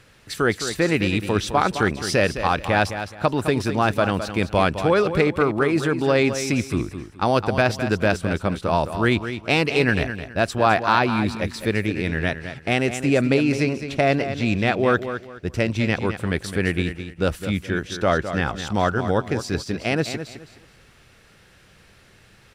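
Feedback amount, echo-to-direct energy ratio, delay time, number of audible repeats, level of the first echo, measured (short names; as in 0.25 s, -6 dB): 27%, -9.5 dB, 0.211 s, 3, -10.0 dB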